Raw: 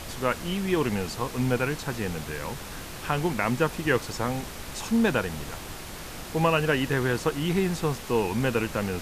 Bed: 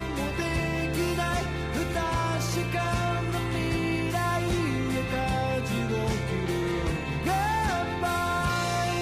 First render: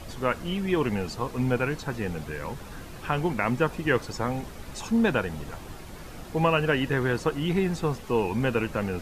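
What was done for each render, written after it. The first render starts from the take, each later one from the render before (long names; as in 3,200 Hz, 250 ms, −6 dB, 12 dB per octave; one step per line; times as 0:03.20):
broadband denoise 9 dB, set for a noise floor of −39 dBFS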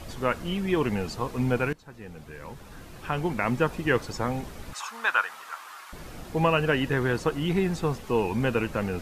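0:01.73–0:03.56: fade in, from −20 dB
0:04.73–0:05.93: high-pass with resonance 1,200 Hz, resonance Q 3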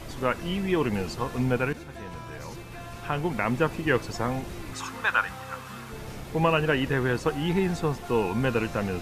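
mix in bed −14.5 dB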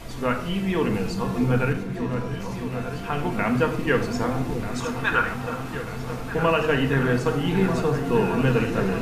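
echo whose low-pass opens from repeat to repeat 619 ms, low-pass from 400 Hz, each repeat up 2 octaves, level −6 dB
rectangular room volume 1,000 cubic metres, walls furnished, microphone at 1.7 metres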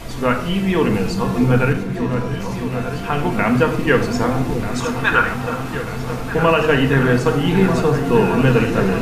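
level +6.5 dB
brickwall limiter −3 dBFS, peak gain reduction 1.5 dB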